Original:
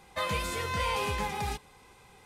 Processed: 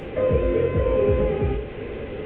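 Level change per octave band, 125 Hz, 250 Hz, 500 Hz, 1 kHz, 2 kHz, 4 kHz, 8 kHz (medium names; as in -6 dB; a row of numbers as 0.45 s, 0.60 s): +12.5 dB, +15.0 dB, +17.0 dB, -3.5 dB, -2.5 dB, no reading, under -30 dB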